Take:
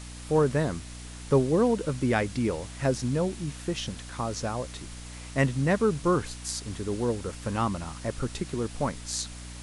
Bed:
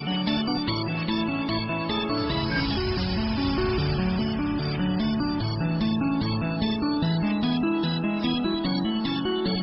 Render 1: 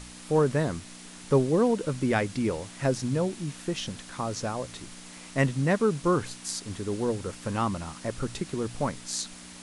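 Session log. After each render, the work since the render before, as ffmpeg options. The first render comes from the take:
-af "bandreject=f=60:t=h:w=4,bandreject=f=120:t=h:w=4"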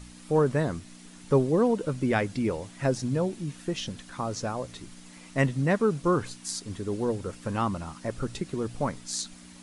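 -af "afftdn=nr=7:nf=-46"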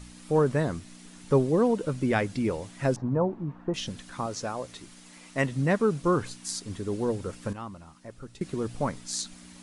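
-filter_complex "[0:a]asettb=1/sr,asplit=3[a][b][c];[a]atrim=end=2.964[d];[b]atrim=start=2.96:end=3.74,asetpts=PTS-STARTPTS,afade=t=in:d=0.004:c=qsin,afade=t=out:st=0.776:d=0.004:c=qsin,lowpass=f=1k:t=q:w=2.5[e];[c]atrim=start=3.736[f];[d][e]acrossfade=d=0.004:c1=hsin:c2=qsin[g];[g][f]acrossfade=d=0.004:c1=qsin:c2=hsin,asettb=1/sr,asplit=3[h][i][j];[h]atrim=end=4.264[k];[i]atrim=start=4.26:end=5.52,asetpts=PTS-STARTPTS,afade=t=in:d=0.004:c=qsin,afade=t=out:st=1.256:d=0.004:c=qsin,lowshelf=f=200:g=-8[l];[j]atrim=start=5.516[m];[k][l]acrossfade=d=0.004:c1=hsin:c2=qsin[n];[n][m]acrossfade=d=0.004:c1=qsin:c2=hsin,asplit=3[o][p][q];[o]atrim=end=7.532[r];[p]atrim=start=7.528:end=8.412,asetpts=PTS-STARTPTS,volume=-11.5dB[s];[q]atrim=start=8.408[t];[r][s]acrossfade=d=0.004:c1=hsin:c2=hsin[u];[u][t]acrossfade=d=0.004:c1=hsin:c2=hsin"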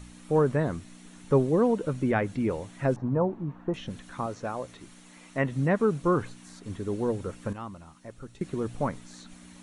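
-filter_complex "[0:a]bandreject=f=4.9k:w=8.2,acrossover=split=2500[a][b];[b]acompressor=threshold=-53dB:ratio=4:attack=1:release=60[c];[a][c]amix=inputs=2:normalize=0"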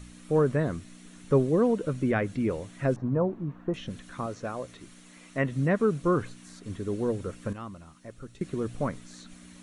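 -af "equalizer=f=860:w=3.8:g=-7"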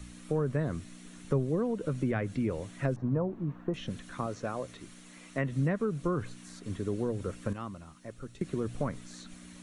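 -filter_complex "[0:a]acrossover=split=140[a][b];[b]acompressor=threshold=-29dB:ratio=4[c];[a][c]amix=inputs=2:normalize=0"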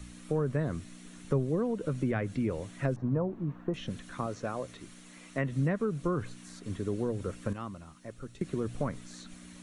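-af anull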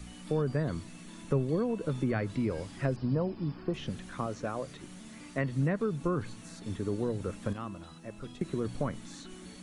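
-filter_complex "[1:a]volume=-25.5dB[a];[0:a][a]amix=inputs=2:normalize=0"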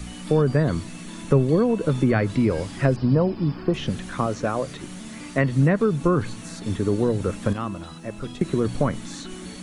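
-af "volume=10.5dB"

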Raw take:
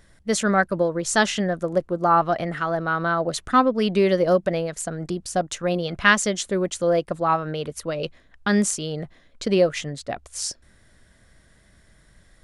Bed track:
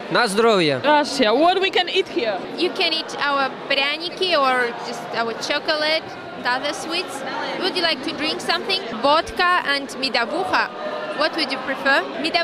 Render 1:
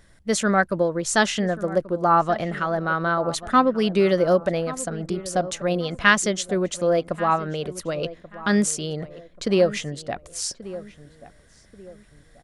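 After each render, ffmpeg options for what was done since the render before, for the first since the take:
-filter_complex "[0:a]asplit=2[a][b];[b]adelay=1134,lowpass=f=1.4k:p=1,volume=-15.5dB,asplit=2[c][d];[d]adelay=1134,lowpass=f=1.4k:p=1,volume=0.36,asplit=2[e][f];[f]adelay=1134,lowpass=f=1.4k:p=1,volume=0.36[g];[a][c][e][g]amix=inputs=4:normalize=0"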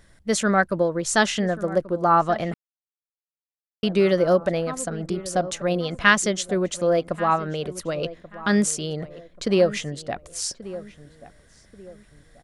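-filter_complex "[0:a]asplit=3[a][b][c];[a]atrim=end=2.54,asetpts=PTS-STARTPTS,afade=t=out:st=2.536:d=0.004:c=hsin[d];[b]atrim=start=2.54:end=3.83,asetpts=PTS-STARTPTS,volume=0[e];[c]atrim=start=3.83,asetpts=PTS-STARTPTS,afade=t=in:d=0.004:c=hsin[f];[d][e][f]concat=n=3:v=0:a=1"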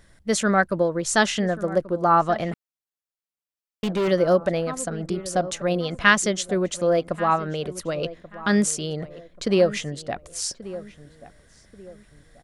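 -filter_complex "[0:a]asettb=1/sr,asplit=3[a][b][c];[a]atrim=end=2.484[d];[b]atrim=start=2.48:end=4.08,asetpts=PTS-STARTPTS,afade=t=in:d=0.004:c=qsin,afade=t=out:st=1.596:d=0.004:c=qsin,volume=20dB,asoftclip=hard,volume=-20dB[e];[c]atrim=start=4.076[f];[d][e]acrossfade=d=0.004:c1=hsin:c2=qsin[g];[g][f]acrossfade=d=0.004:c1=qsin:c2=hsin"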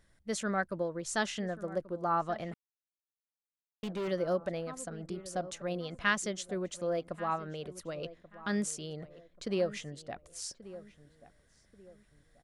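-af "volume=-12.5dB"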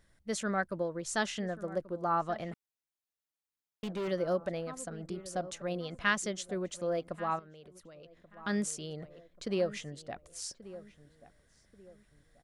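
-filter_complex "[0:a]asettb=1/sr,asplit=3[a][b][c];[a]atrim=end=7.394[d];[b]atrim=start=7.39:end=8.37,asetpts=PTS-STARTPTS,afade=t=in:d=0.004:c=qsin,afade=t=out:st=0.976:d=0.004:c=qsin,acompressor=threshold=-52dB:ratio=4:attack=3.2:release=140:knee=1:detection=peak[e];[c]atrim=start=8.366[f];[d][e]acrossfade=d=0.004:c1=hsin:c2=qsin[g];[g][f]acrossfade=d=0.004:c1=qsin:c2=hsin"

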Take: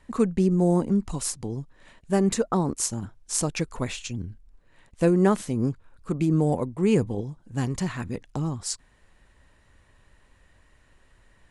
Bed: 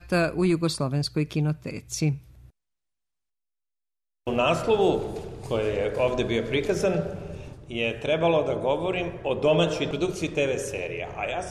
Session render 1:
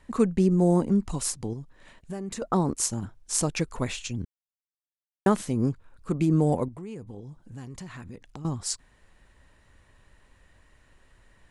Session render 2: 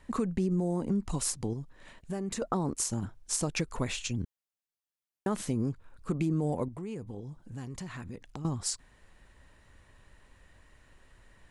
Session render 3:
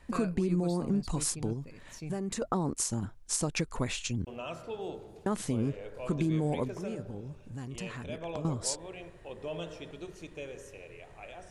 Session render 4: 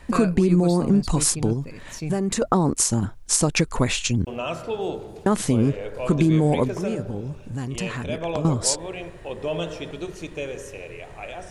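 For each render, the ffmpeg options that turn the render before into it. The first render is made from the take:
-filter_complex "[0:a]asettb=1/sr,asplit=3[a][b][c];[a]atrim=end=1.534[d];[b]atrim=start=1.53:end=2.42,asetpts=PTS-STARTPTS,afade=t=in:d=0.004:c=qsin,afade=t=out:st=0.886:d=0.004:c=qsin,acompressor=threshold=-33dB:ratio=4:attack=3.2:release=140:knee=1:detection=peak[e];[c]atrim=start=2.416[f];[d][e]acrossfade=d=0.004:c1=hsin:c2=qsin[g];[g][f]acrossfade=d=0.004:c1=qsin:c2=hsin,asettb=1/sr,asplit=3[h][i][j];[h]atrim=end=6.684[k];[i]atrim=start=6.68:end=8.45,asetpts=PTS-STARTPTS,afade=t=in:d=0.004:c=qsin,afade=t=out:st=1.766:d=0.004:c=qsin,acompressor=threshold=-39dB:ratio=4:attack=3.2:release=140:knee=1:detection=peak[l];[j]atrim=start=8.446[m];[k][l]acrossfade=d=0.004:c1=hsin:c2=qsin[n];[n][m]acrossfade=d=0.004:c1=qsin:c2=hsin,asplit=3[o][p][q];[o]atrim=end=4.25,asetpts=PTS-STARTPTS,afade=t=out:st=4.246:d=0.004:c=hsin[r];[p]atrim=start=4.25:end=5.26,asetpts=PTS-STARTPTS,volume=0[s];[q]atrim=start=5.26,asetpts=PTS-STARTPTS,afade=t=in:d=0.004:c=hsin[t];[r][s][t]concat=n=3:v=0:a=1"
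-af "alimiter=limit=-16.5dB:level=0:latency=1:release=63,acompressor=threshold=-27dB:ratio=3"
-filter_complex "[1:a]volume=-17.5dB[a];[0:a][a]amix=inputs=2:normalize=0"
-af "volume=11dB"

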